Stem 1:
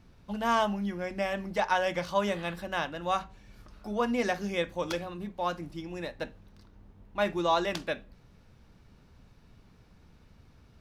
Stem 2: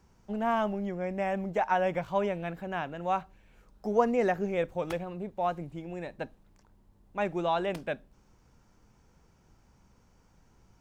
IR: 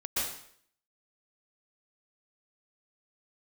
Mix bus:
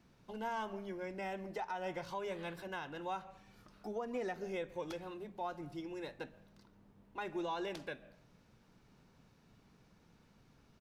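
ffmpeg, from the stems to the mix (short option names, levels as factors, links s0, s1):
-filter_complex "[0:a]highpass=f=120:w=0.5412,highpass=f=120:w=1.3066,volume=0.531[s0];[1:a]volume=-1,adelay=1.4,volume=0.299,asplit=3[s1][s2][s3];[s2]volume=0.0708[s4];[s3]apad=whole_len=476411[s5];[s0][s5]sidechaincompress=threshold=0.00447:ratio=3:attack=12:release=210[s6];[2:a]atrim=start_sample=2205[s7];[s4][s7]afir=irnorm=-1:irlink=0[s8];[s6][s1][s8]amix=inputs=3:normalize=0,alimiter=level_in=2.11:limit=0.0631:level=0:latency=1:release=165,volume=0.473"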